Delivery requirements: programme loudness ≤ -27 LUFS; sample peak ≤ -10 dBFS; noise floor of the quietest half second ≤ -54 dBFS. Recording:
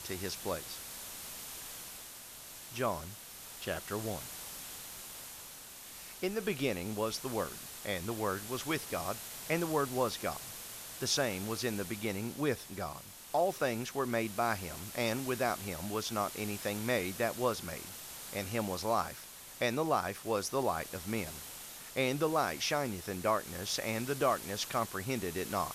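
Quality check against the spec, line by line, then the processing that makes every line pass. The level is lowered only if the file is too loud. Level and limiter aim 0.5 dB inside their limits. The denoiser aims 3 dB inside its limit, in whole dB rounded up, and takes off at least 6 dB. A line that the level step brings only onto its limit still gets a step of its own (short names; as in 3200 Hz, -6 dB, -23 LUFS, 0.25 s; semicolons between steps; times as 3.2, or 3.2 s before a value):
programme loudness -35.5 LUFS: OK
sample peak -17.0 dBFS: OK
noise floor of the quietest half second -50 dBFS: fail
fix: denoiser 7 dB, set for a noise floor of -50 dBFS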